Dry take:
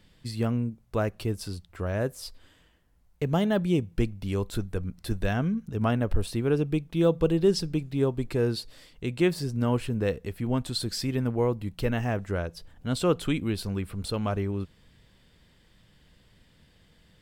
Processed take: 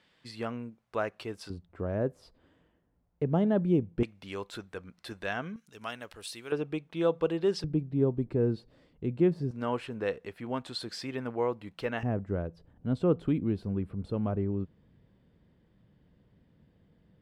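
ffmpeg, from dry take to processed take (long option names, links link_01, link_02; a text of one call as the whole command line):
ffmpeg -i in.wav -af "asetnsamples=nb_out_samples=441:pad=0,asendcmd='1.5 bandpass f 310;4.03 bandpass f 1700;5.56 bandpass f 5100;6.52 bandpass f 1200;7.64 bandpass f 220;9.51 bandpass f 1200;12.03 bandpass f 220',bandpass=frequency=1400:width_type=q:width=0.52:csg=0" out.wav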